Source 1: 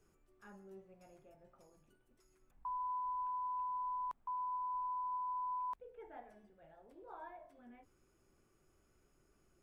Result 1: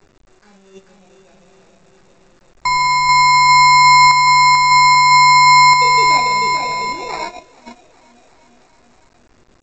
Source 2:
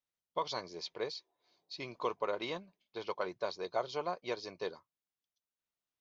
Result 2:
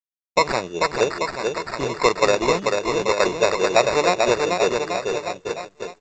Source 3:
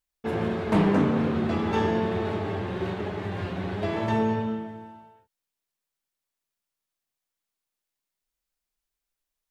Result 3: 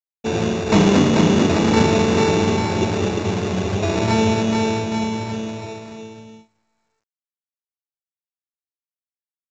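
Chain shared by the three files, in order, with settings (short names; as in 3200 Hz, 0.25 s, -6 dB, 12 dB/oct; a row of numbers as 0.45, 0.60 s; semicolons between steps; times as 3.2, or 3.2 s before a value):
Wiener smoothing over 15 samples; on a send: bouncing-ball echo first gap 0.44 s, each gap 0.9×, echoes 5; on the sum: gate -50 dBFS, range -21 dB; sample-and-hold 14×; µ-law 128 kbps 16000 Hz; normalise peaks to -3 dBFS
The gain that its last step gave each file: +26.5, +17.5, +7.0 dB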